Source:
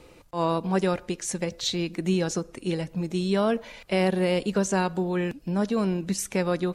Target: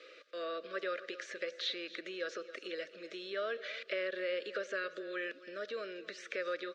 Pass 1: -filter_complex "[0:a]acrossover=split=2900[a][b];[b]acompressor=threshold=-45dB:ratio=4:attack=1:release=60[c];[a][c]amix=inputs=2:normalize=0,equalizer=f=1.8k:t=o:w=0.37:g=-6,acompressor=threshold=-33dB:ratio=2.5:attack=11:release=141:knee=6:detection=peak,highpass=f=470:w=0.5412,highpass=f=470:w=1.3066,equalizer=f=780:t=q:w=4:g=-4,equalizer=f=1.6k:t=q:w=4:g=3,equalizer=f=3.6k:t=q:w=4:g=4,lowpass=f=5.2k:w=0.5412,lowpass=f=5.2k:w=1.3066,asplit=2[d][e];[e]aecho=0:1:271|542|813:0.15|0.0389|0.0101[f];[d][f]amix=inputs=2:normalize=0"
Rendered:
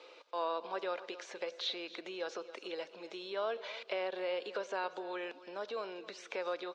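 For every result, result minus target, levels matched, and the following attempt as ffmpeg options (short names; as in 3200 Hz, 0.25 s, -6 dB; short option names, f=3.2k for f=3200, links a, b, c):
1000 Hz band +6.5 dB; 2000 Hz band -4.5 dB
-filter_complex "[0:a]acrossover=split=2900[a][b];[b]acompressor=threshold=-45dB:ratio=4:attack=1:release=60[c];[a][c]amix=inputs=2:normalize=0,equalizer=f=1.8k:t=o:w=0.37:g=-6,acompressor=threshold=-33dB:ratio=2.5:attack=11:release=141:knee=6:detection=peak,asuperstop=centerf=860:order=12:qfactor=1.7,highpass=f=470:w=0.5412,highpass=f=470:w=1.3066,equalizer=f=780:t=q:w=4:g=-4,equalizer=f=1.6k:t=q:w=4:g=3,equalizer=f=3.6k:t=q:w=4:g=4,lowpass=f=5.2k:w=0.5412,lowpass=f=5.2k:w=1.3066,asplit=2[d][e];[e]aecho=0:1:271|542|813:0.15|0.0389|0.0101[f];[d][f]amix=inputs=2:normalize=0"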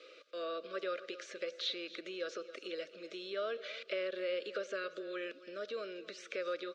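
2000 Hz band -3.5 dB
-filter_complex "[0:a]acrossover=split=2900[a][b];[b]acompressor=threshold=-45dB:ratio=4:attack=1:release=60[c];[a][c]amix=inputs=2:normalize=0,equalizer=f=1.8k:t=o:w=0.37:g=3.5,acompressor=threshold=-33dB:ratio=2.5:attack=11:release=141:knee=6:detection=peak,asuperstop=centerf=860:order=12:qfactor=1.7,highpass=f=470:w=0.5412,highpass=f=470:w=1.3066,equalizer=f=780:t=q:w=4:g=-4,equalizer=f=1.6k:t=q:w=4:g=3,equalizer=f=3.6k:t=q:w=4:g=4,lowpass=f=5.2k:w=0.5412,lowpass=f=5.2k:w=1.3066,asplit=2[d][e];[e]aecho=0:1:271|542|813:0.15|0.0389|0.0101[f];[d][f]amix=inputs=2:normalize=0"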